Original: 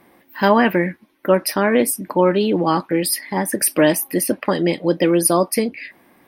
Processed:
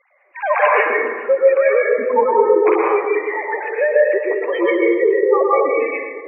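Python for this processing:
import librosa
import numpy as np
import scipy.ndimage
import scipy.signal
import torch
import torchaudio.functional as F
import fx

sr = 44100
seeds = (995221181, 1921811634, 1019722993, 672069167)

y = fx.sine_speech(x, sr)
y = fx.lowpass(y, sr, hz=3000.0, slope=6)
y = fx.peak_eq(y, sr, hz=2300.0, db=10.0, octaves=0.38)
y = fx.echo_feedback(y, sr, ms=419, feedback_pct=59, wet_db=-19)
y = fx.spec_gate(y, sr, threshold_db=-15, keep='strong')
y = fx.low_shelf(y, sr, hz=200.0, db=-10.0)
y = fx.rev_plate(y, sr, seeds[0], rt60_s=1.4, hf_ratio=0.45, predelay_ms=105, drr_db=-3.5)
y = y * librosa.db_to_amplitude(-1.5)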